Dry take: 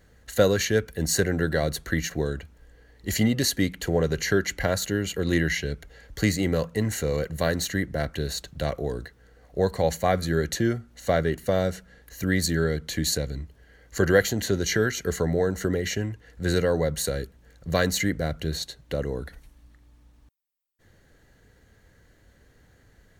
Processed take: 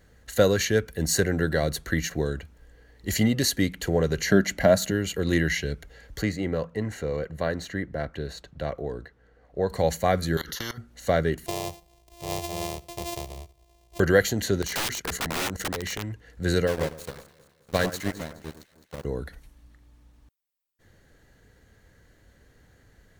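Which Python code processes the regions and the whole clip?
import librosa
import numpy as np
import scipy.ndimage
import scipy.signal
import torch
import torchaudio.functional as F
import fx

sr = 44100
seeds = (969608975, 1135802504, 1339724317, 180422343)

y = fx.chain(x, sr, fx.low_shelf(hz=160.0, db=-4.5),
    fx.small_body(hz=(210.0, 620.0), ring_ms=35, db=12), at=(4.29, 4.91))
y = fx.chain(y, sr, fx.lowpass(hz=1500.0, slope=6),
    fx.low_shelf(hz=340.0, db=-5.5), at=(6.22, 9.7))
y = fx.chain(y, sr, fx.level_steps(step_db=24),
    fx.fixed_phaser(hz=2400.0, stages=6),
    fx.spectral_comp(ratio=4.0), at=(10.37, 10.78))
y = fx.chain(y, sr, fx.sample_sort(block=128),
    fx.fixed_phaser(hz=610.0, stages=4),
    fx.comb_fb(f0_hz=130.0, decay_s=0.44, harmonics='all', damping=0.0, mix_pct=40), at=(11.46, 14.0))
y = fx.chain(y, sr, fx.level_steps(step_db=12),
    fx.leveller(passes=1),
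    fx.overflow_wrap(gain_db=23.0), at=(14.62, 16.12))
y = fx.chain(y, sr, fx.sample_gate(floor_db=-24.5),
    fx.echo_alternate(ms=105, hz=1700.0, feedback_pct=69, wet_db=-5.5),
    fx.upward_expand(threshold_db=-32.0, expansion=2.5), at=(16.67, 19.05))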